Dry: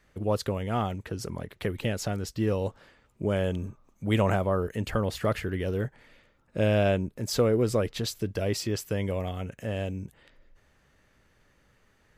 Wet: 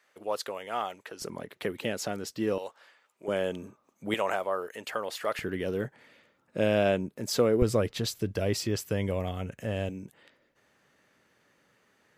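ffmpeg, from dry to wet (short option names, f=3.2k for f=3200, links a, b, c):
-af "asetnsamples=n=441:p=0,asendcmd='1.22 highpass f 230;2.58 highpass f 750;3.28 highpass f 270;4.14 highpass f 570;5.39 highpass f 170;7.62 highpass f 67;9.89 highpass f 190',highpass=590"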